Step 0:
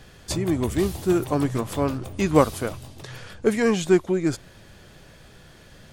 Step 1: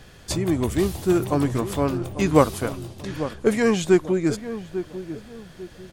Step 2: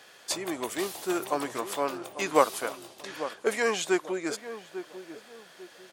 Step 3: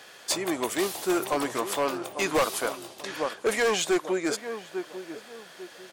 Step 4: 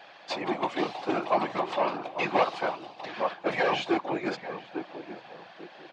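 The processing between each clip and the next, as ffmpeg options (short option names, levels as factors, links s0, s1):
-filter_complex "[0:a]asplit=2[s0][s1];[s1]adelay=846,lowpass=f=1000:p=1,volume=0.282,asplit=2[s2][s3];[s3]adelay=846,lowpass=f=1000:p=1,volume=0.35,asplit=2[s4][s5];[s5]adelay=846,lowpass=f=1000:p=1,volume=0.35,asplit=2[s6][s7];[s7]adelay=846,lowpass=f=1000:p=1,volume=0.35[s8];[s0][s2][s4][s6][s8]amix=inputs=5:normalize=0,volume=1.12"
-af "highpass=570,volume=0.891"
-af "volume=15,asoftclip=hard,volume=0.0668,volume=1.68"
-af "afftfilt=real='hypot(re,im)*cos(2*PI*random(0))':imag='hypot(re,im)*sin(2*PI*random(1))':win_size=512:overlap=0.75,highpass=f=140:w=0.5412,highpass=f=140:w=1.3066,equalizer=f=250:t=q:w=4:g=-8,equalizer=f=430:t=q:w=4:g=-10,equalizer=f=780:t=q:w=4:g=6,equalizer=f=1400:t=q:w=4:g=-5,equalizer=f=1900:t=q:w=4:g=-4,equalizer=f=3300:t=q:w=4:g=-5,lowpass=f=3700:w=0.5412,lowpass=f=3700:w=1.3066,volume=2.37"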